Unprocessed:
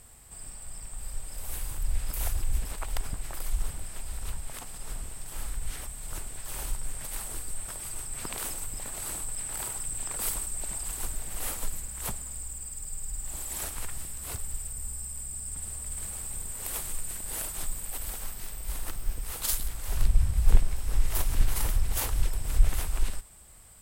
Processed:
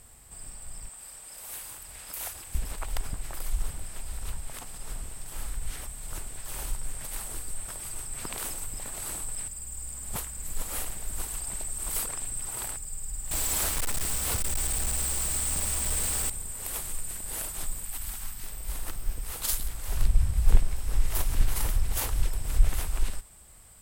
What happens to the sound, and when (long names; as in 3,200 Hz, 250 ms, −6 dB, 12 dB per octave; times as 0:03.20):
0:00.89–0:02.55: high-pass filter 600 Hz 6 dB per octave
0:09.48–0:12.77: reverse
0:13.31–0:16.30: log-companded quantiser 2 bits
0:17.84–0:18.44: parametric band 490 Hz −13.5 dB 0.84 octaves